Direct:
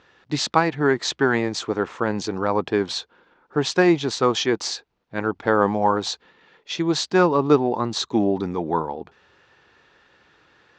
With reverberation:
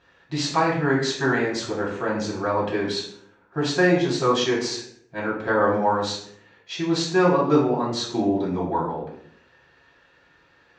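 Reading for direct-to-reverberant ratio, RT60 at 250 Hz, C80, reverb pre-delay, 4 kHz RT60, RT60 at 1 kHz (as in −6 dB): −6.0 dB, 0.85 s, 8.0 dB, 3 ms, 0.45 s, 0.60 s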